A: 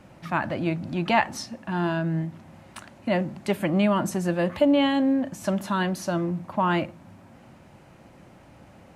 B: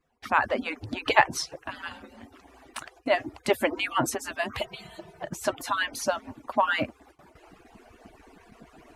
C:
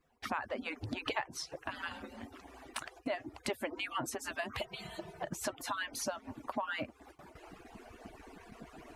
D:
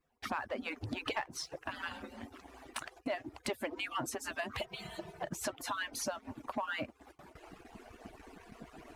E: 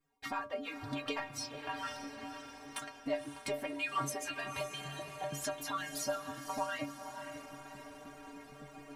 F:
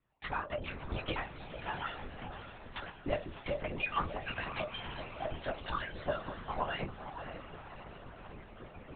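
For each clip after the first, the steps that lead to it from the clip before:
median-filter separation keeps percussive; gate with hold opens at -48 dBFS; gain +4.5 dB
compressor 4:1, threshold -36 dBFS, peak gain reduction 19.5 dB
sample leveller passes 1; gain -3.5 dB
metallic resonator 140 Hz, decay 0.31 s, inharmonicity 0.008; diffused feedback echo 0.534 s, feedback 56%, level -9 dB; gain +11 dB
LPC vocoder at 8 kHz whisper; gain +1.5 dB

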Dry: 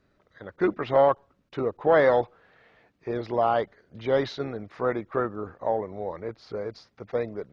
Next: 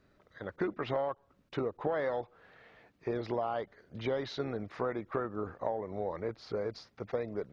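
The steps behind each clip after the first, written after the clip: compressor 8:1, threshold -30 dBFS, peak gain reduction 15 dB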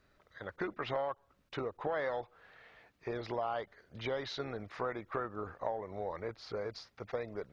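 bell 230 Hz -8 dB 2.8 oct; gain +1.5 dB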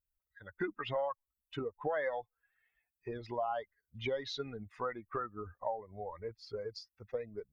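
per-bin expansion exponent 2; gain +4 dB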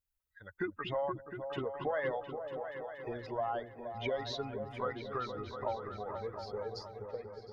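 ending faded out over 0.66 s; repeats that get brighter 0.237 s, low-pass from 200 Hz, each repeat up 2 oct, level -3 dB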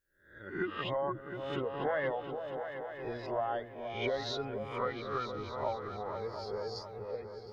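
spectral swells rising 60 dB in 0.53 s

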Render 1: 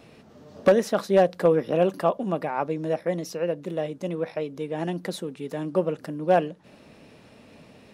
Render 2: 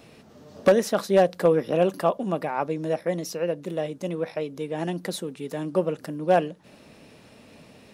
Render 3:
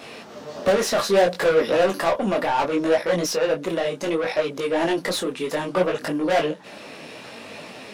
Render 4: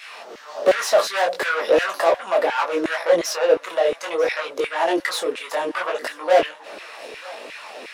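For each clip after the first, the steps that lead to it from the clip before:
high shelf 4800 Hz +6 dB
overdrive pedal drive 26 dB, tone 4400 Hz, clips at -8.5 dBFS; detuned doubles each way 23 cents
LFO high-pass saw down 2.8 Hz 340–2100 Hz; thinning echo 0.944 s, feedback 50%, high-pass 880 Hz, level -19 dB

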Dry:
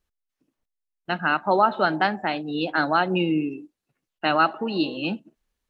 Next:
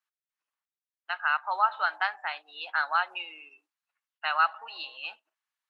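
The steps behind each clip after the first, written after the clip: HPF 1000 Hz 24 dB/oct; high shelf 2500 Hz -9.5 dB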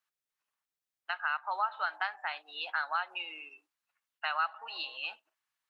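compressor 2:1, threshold -37 dBFS, peak gain reduction 10.5 dB; gain +2 dB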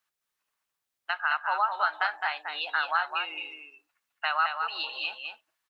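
echo 0.211 s -5.5 dB; gain +5 dB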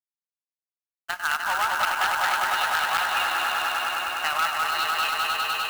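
swelling echo 0.1 s, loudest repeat 5, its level -6 dB; companded quantiser 4-bit; core saturation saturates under 1900 Hz; gain +2 dB

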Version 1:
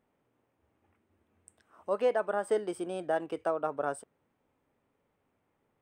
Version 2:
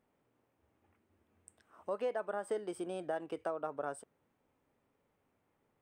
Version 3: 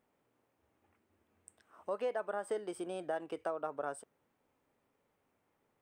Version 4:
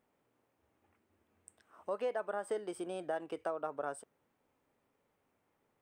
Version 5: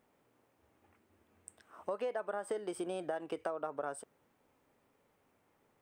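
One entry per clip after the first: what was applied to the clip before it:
compressor 2:1, threshold -36 dBFS, peak gain reduction 8 dB; gain -1.5 dB
low shelf 260 Hz -5 dB; gain +1 dB
nothing audible
compressor 3:1, threshold -40 dBFS, peak gain reduction 7 dB; gain +5 dB

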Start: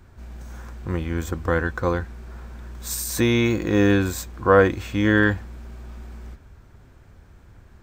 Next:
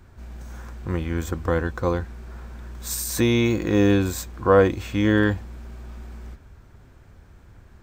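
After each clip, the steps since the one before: dynamic EQ 1600 Hz, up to -6 dB, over -35 dBFS, Q 1.8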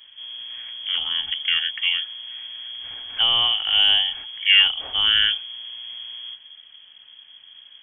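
inverted band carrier 3300 Hz

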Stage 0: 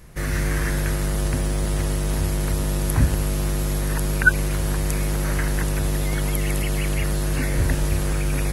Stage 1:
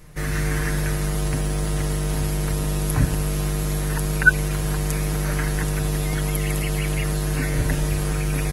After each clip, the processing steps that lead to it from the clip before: comb 6.6 ms, depth 53%; gain -1 dB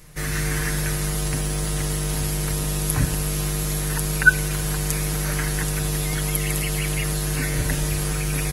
high shelf 2200 Hz +8 dB; on a send at -19.5 dB: reverb, pre-delay 3 ms; on the sum: gain -2.5 dB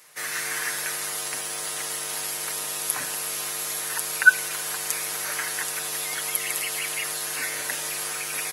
HPF 720 Hz 12 dB/oct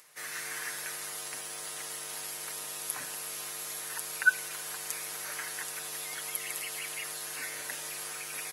upward compressor, threshold -45 dBFS; gain -9 dB

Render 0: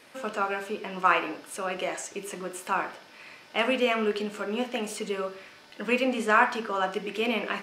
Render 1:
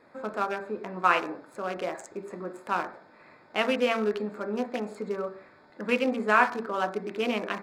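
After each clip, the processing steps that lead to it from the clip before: Wiener smoothing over 15 samples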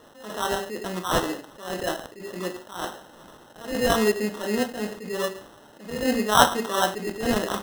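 sample-and-hold 19×; attack slew limiter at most 110 dB/s; gain +6.5 dB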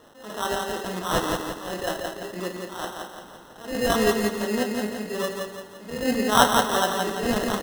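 feedback echo 0.171 s, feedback 46%, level -4 dB; gain -1 dB

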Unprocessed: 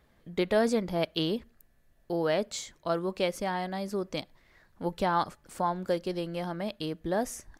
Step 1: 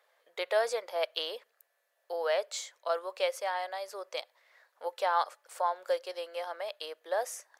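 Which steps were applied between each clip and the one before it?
elliptic high-pass 510 Hz, stop band 80 dB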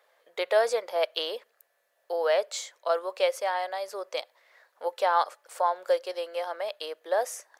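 low shelf 480 Hz +6 dB; gain +3 dB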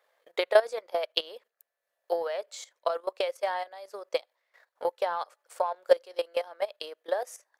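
level quantiser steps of 10 dB; transient shaper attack +9 dB, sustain -6 dB; gain -2 dB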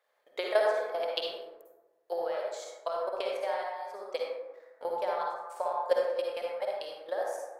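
reverb RT60 1.2 s, pre-delay 42 ms, DRR -2.5 dB; gain -6.5 dB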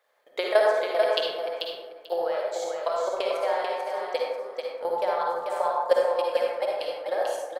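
feedback echo 0.44 s, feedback 17%, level -5 dB; gain +5.5 dB

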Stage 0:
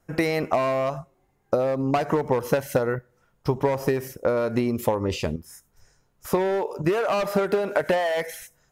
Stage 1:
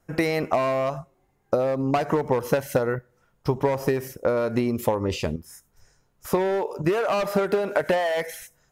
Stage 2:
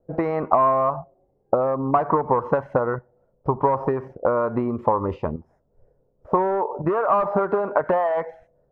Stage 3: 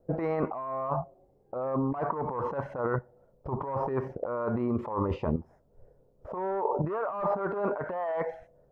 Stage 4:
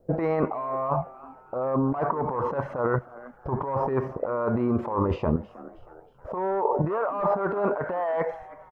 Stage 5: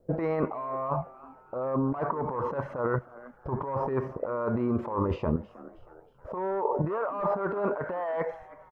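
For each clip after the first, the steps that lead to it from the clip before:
nothing audible
envelope low-pass 510–1100 Hz up, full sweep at -21.5 dBFS; gain -1 dB
negative-ratio compressor -27 dBFS, ratio -1; gain -3.5 dB
frequency-shifting echo 0.317 s, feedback 47%, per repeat +120 Hz, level -19.5 dB; gain +4.5 dB
bell 750 Hz -4 dB 0.3 oct; gain -3 dB

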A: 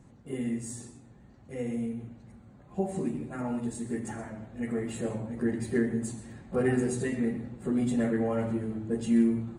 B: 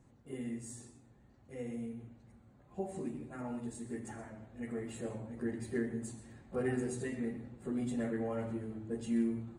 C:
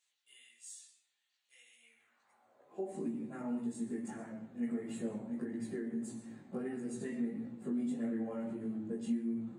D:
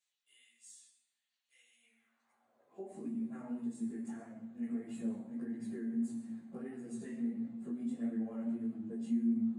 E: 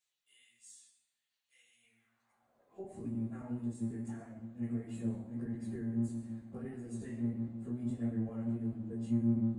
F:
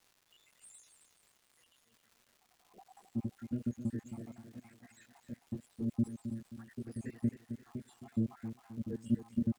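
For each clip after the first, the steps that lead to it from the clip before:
bell 180 Hz -5 dB 0.44 oct; gain -7.5 dB
compressor 10:1, threshold -38 dBFS, peak gain reduction 11 dB; chorus 1.6 Hz, delay 17 ms, depth 4.3 ms; high-pass sweep 3200 Hz -> 200 Hz, 1.75–3.06; gain +2 dB
resonator 230 Hz, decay 0.7 s, harmonics odd, mix 80%; flange 1.6 Hz, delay 5.8 ms, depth 9.5 ms, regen -34%; gain +11 dB
octaver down 1 oct, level -4 dB
random spectral dropouts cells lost 73%; crackle 370/s -58 dBFS; feedback echo 0.265 s, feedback 40%, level -10 dB; gain +3.5 dB

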